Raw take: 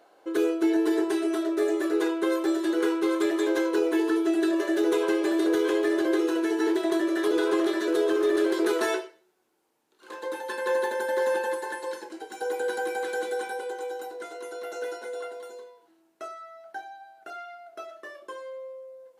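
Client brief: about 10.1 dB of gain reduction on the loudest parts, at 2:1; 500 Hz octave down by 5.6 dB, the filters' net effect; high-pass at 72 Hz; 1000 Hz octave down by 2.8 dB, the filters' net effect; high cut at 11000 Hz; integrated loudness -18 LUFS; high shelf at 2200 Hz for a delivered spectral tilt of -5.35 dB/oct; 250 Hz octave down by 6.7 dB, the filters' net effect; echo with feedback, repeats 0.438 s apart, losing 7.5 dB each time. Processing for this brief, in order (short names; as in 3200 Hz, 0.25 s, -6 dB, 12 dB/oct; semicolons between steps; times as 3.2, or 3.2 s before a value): HPF 72 Hz; LPF 11000 Hz; bell 250 Hz -8.5 dB; bell 500 Hz -3.5 dB; bell 1000 Hz -3 dB; high shelf 2200 Hz +5 dB; compressor 2:1, threshold -45 dBFS; feedback echo 0.438 s, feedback 42%, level -7.5 dB; gain +22.5 dB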